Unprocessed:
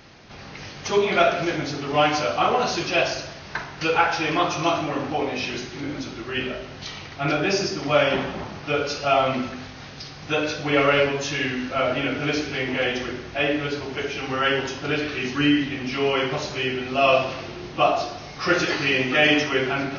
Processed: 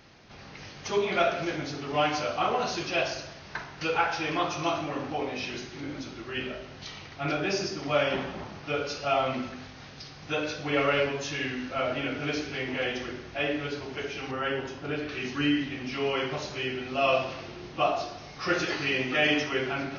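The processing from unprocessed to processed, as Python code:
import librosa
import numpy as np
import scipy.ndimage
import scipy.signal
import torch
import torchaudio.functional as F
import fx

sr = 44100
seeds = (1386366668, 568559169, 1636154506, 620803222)

y = fx.high_shelf(x, sr, hz=2200.0, db=-8.5, at=(14.31, 15.09))
y = y * 10.0 ** (-6.5 / 20.0)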